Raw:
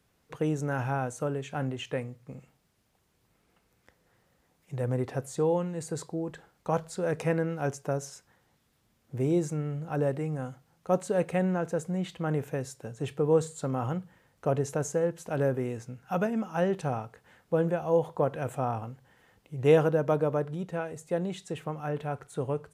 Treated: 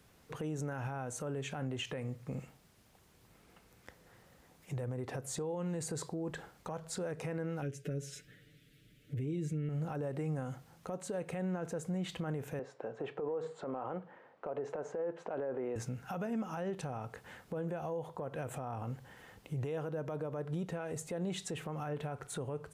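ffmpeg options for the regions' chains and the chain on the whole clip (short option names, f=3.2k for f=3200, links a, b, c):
-filter_complex "[0:a]asettb=1/sr,asplit=3[a][b][c];[a]atrim=end=7.624[d];[b]atrim=start=7.62:end=9.69,asetpts=PTS-STARTPTS,afade=t=in:d=0.004:c=qsin,afade=t=out:st=2.066:d=0.004:c=qsin,asuperstop=centerf=910:order=4:qfactor=0.66,highshelf=f=4.1k:t=q:w=1.5:g=-6.5,aecho=1:1:6.8:0.87,atrim=end_sample=91287[e];[c]atrim=start=9.686[f];[d][e]acrossfade=d=0.004:c1=hsin:c2=qsin[g];[g][f]acrossfade=d=0.004:c1=qsin:c2=hsin,asettb=1/sr,asplit=3[h][i][j];[h]atrim=end=12.594[k];[i]atrim=start=12.59:end=15.76,asetpts=PTS-STARTPTS,afade=t=in:d=0.004:c=qsin,afade=t=out:st=3.166:d=0.004:c=qsin,highpass=520,lowpass=2.7k,tiltshelf=f=1.3k:g=8,acompressor=threshold=-28dB:ratio=6:attack=3.2:release=140:knee=1:detection=peak[l];[j]atrim=start=15.756[m];[k][l]acrossfade=d=0.004:c1=hsin:c2=qsin[n];[n][m]acrossfade=d=0.004:c1=qsin:c2=hsin,acompressor=threshold=-37dB:ratio=6,alimiter=level_in=12.5dB:limit=-24dB:level=0:latency=1:release=64,volume=-12.5dB,volume=6.5dB"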